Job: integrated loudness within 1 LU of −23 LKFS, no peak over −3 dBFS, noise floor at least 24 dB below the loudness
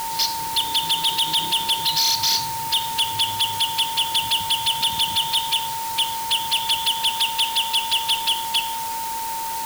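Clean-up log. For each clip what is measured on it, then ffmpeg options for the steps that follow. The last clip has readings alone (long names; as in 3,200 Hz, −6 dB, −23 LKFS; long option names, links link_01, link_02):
interfering tone 910 Hz; level of the tone −26 dBFS; background noise floor −27 dBFS; target noise floor −44 dBFS; integrated loudness −20.0 LKFS; sample peak −10.5 dBFS; target loudness −23.0 LKFS
→ -af "bandreject=frequency=910:width=30"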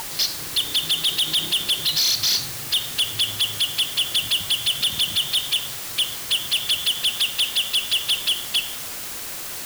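interfering tone none found; background noise floor −32 dBFS; target noise floor −45 dBFS
→ -af "afftdn=noise_reduction=13:noise_floor=-32"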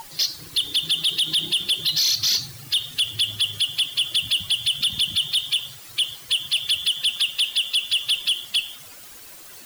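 background noise floor −43 dBFS; target noise floor −45 dBFS
→ -af "afftdn=noise_reduction=6:noise_floor=-43"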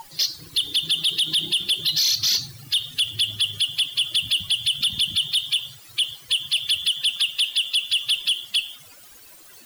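background noise floor −47 dBFS; integrated loudness −21.0 LKFS; sample peak −13.5 dBFS; target loudness −23.0 LKFS
→ -af "volume=-2dB"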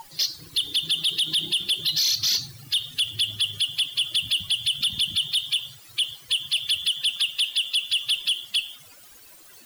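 integrated loudness −23.0 LKFS; sample peak −15.5 dBFS; background noise floor −49 dBFS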